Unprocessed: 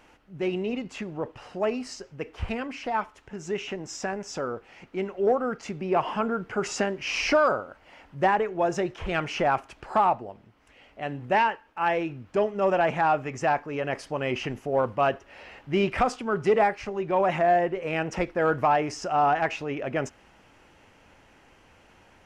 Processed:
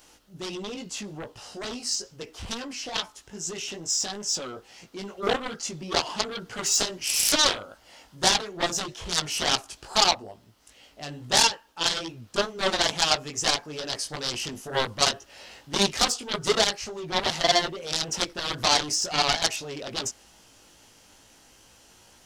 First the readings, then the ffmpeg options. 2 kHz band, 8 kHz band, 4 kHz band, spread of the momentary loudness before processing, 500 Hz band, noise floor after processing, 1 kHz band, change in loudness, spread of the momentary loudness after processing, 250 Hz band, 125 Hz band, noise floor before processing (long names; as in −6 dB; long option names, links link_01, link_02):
0.0 dB, +17.0 dB, +15.5 dB, 13 LU, −6.0 dB, −56 dBFS, −4.5 dB, +1.5 dB, 15 LU, −5.0 dB, −4.0 dB, −58 dBFS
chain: -af "flanger=delay=17:depth=3:speed=2.3,aeval=exprs='0.224*(cos(1*acos(clip(val(0)/0.224,-1,1)))-cos(1*PI/2))+0.0708*(cos(7*acos(clip(val(0)/0.224,-1,1)))-cos(7*PI/2))':channel_layout=same,aexciter=amount=5.7:drive=5.7:freq=3400,volume=-1dB"